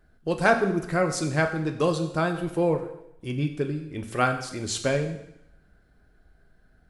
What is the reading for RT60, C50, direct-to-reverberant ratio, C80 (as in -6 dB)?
0.80 s, 10.0 dB, 5.0 dB, 11.5 dB